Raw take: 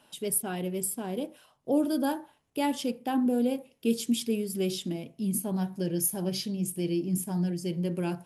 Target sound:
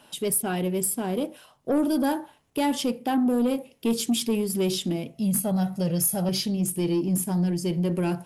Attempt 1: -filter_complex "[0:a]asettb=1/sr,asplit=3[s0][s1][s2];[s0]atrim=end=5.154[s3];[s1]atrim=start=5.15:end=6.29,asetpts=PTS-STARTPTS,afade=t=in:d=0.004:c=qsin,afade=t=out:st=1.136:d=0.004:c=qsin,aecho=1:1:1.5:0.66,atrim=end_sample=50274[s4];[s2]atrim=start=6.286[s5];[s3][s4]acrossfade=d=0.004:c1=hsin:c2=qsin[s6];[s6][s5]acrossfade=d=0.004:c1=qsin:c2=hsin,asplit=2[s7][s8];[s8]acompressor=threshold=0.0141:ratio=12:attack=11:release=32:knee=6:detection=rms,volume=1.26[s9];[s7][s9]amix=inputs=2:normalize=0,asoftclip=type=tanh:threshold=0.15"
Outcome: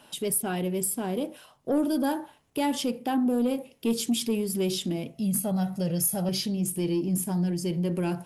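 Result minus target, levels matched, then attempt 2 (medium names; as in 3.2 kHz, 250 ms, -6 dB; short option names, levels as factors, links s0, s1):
compression: peak gain reduction +9.5 dB
-filter_complex "[0:a]asettb=1/sr,asplit=3[s0][s1][s2];[s0]atrim=end=5.154[s3];[s1]atrim=start=5.15:end=6.29,asetpts=PTS-STARTPTS,afade=t=in:d=0.004:c=qsin,afade=t=out:st=1.136:d=0.004:c=qsin,aecho=1:1:1.5:0.66,atrim=end_sample=50274[s4];[s2]atrim=start=6.286[s5];[s3][s4]acrossfade=d=0.004:c1=hsin:c2=qsin[s6];[s6][s5]acrossfade=d=0.004:c1=qsin:c2=hsin,asplit=2[s7][s8];[s8]acompressor=threshold=0.0473:ratio=12:attack=11:release=32:knee=6:detection=rms,volume=1.26[s9];[s7][s9]amix=inputs=2:normalize=0,asoftclip=type=tanh:threshold=0.15"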